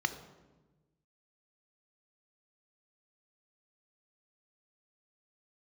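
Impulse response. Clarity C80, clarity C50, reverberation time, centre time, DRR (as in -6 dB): 13.5 dB, 11.5 dB, 1.2 s, 11 ms, 9.0 dB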